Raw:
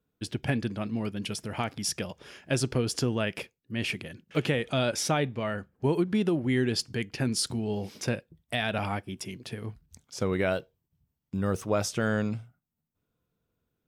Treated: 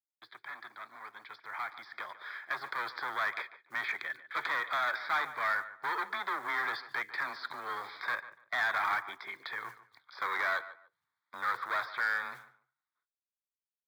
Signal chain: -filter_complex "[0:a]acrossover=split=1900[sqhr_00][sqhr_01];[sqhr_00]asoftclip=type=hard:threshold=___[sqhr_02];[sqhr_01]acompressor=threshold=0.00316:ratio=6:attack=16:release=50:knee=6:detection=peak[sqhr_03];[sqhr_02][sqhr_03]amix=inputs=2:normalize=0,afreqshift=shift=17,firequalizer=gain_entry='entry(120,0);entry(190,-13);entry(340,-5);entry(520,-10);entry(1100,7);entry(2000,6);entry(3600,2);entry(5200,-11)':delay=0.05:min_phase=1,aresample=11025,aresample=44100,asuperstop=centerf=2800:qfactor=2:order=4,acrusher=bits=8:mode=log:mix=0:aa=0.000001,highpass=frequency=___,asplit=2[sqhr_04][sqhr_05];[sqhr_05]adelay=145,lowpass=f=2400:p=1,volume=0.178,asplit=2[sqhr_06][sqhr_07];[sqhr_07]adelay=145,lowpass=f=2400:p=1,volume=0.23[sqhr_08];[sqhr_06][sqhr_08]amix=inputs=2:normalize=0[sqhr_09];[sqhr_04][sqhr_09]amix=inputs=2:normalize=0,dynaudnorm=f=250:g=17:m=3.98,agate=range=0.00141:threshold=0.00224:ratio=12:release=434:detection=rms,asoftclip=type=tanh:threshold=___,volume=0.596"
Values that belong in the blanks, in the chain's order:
0.0224, 800, 0.15